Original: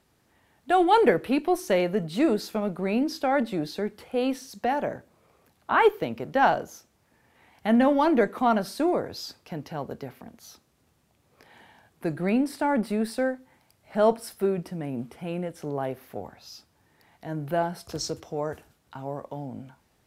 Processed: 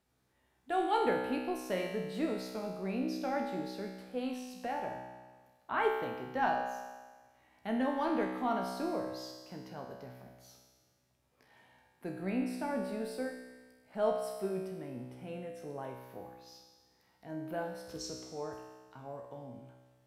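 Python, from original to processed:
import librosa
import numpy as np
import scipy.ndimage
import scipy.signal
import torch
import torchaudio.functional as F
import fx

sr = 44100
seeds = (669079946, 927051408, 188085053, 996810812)

y = fx.comb_fb(x, sr, f0_hz=63.0, decay_s=1.4, harmonics='all', damping=0.0, mix_pct=90)
y = y * librosa.db_to_amplitude(3.0)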